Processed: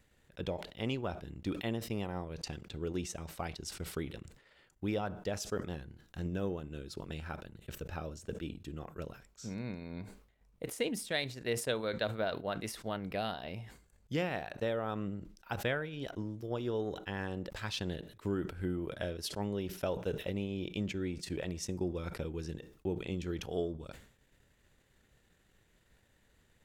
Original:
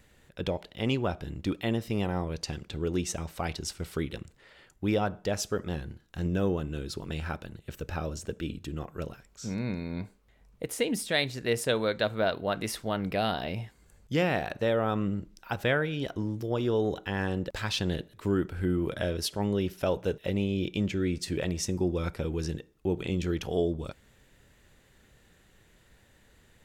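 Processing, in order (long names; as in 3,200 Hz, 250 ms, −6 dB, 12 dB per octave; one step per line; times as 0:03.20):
transient designer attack +3 dB, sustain −7 dB
level that may fall only so fast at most 97 dB per second
level −8.5 dB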